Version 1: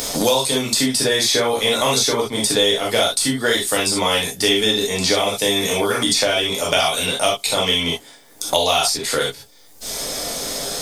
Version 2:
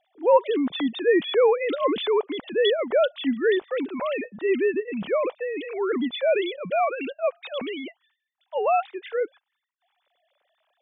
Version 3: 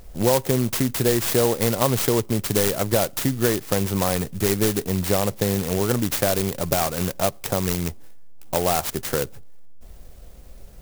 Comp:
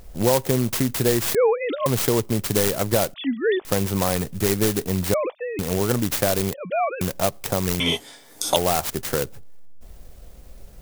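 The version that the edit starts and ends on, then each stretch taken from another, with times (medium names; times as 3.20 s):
3
1.35–1.86 s: from 2
3.14–3.65 s: from 2
5.14–5.59 s: from 2
6.54–7.01 s: from 2
7.80–8.56 s: from 1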